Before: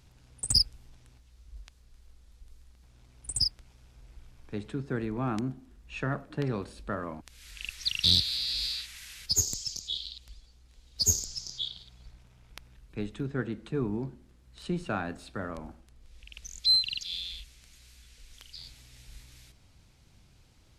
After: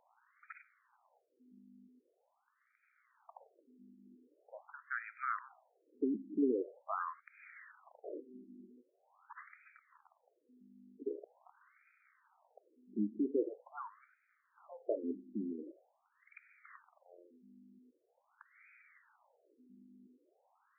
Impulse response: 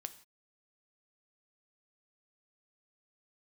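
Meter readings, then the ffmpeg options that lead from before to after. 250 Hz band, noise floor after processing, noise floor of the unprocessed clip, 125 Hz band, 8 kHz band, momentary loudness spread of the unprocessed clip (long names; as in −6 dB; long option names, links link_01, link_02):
−4.0 dB, −79 dBFS, −60 dBFS, below −20 dB, below −40 dB, 21 LU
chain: -af "aeval=exprs='0.299*(cos(1*acos(clip(val(0)/0.299,-1,1)))-cos(1*PI/2))+0.133*(cos(2*acos(clip(val(0)/0.299,-1,1)))-cos(2*PI/2))+0.0376*(cos(3*acos(clip(val(0)/0.299,-1,1)))-cos(3*PI/2))+0.0596*(cos(4*acos(clip(val(0)/0.299,-1,1)))-cos(4*PI/2))':channel_layout=same,aeval=exprs='val(0)+0.00224*(sin(2*PI*50*n/s)+sin(2*PI*2*50*n/s)/2+sin(2*PI*3*50*n/s)/3+sin(2*PI*4*50*n/s)/4+sin(2*PI*5*50*n/s)/5)':channel_layout=same,afftfilt=real='re*between(b*sr/1024,270*pow(1800/270,0.5+0.5*sin(2*PI*0.44*pts/sr))/1.41,270*pow(1800/270,0.5+0.5*sin(2*PI*0.44*pts/sr))*1.41)':imag='im*between(b*sr/1024,270*pow(1800/270,0.5+0.5*sin(2*PI*0.44*pts/sr))/1.41,270*pow(1800/270,0.5+0.5*sin(2*PI*0.44*pts/sr))*1.41)':win_size=1024:overlap=0.75,volume=7dB"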